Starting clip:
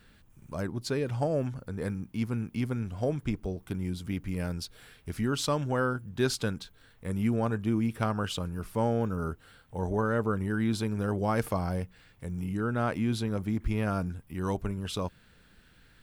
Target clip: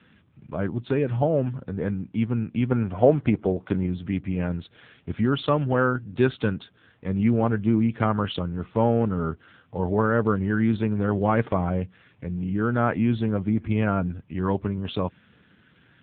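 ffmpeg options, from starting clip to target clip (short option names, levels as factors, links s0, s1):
-filter_complex "[0:a]asplit=3[s0][s1][s2];[s0]afade=t=out:st=2.7:d=0.02[s3];[s1]equalizer=f=800:t=o:w=2.8:g=8,afade=t=in:st=2.7:d=0.02,afade=t=out:st=3.85:d=0.02[s4];[s2]afade=t=in:st=3.85:d=0.02[s5];[s3][s4][s5]amix=inputs=3:normalize=0,volume=2.24" -ar 8000 -c:a libopencore_amrnb -b:a 7400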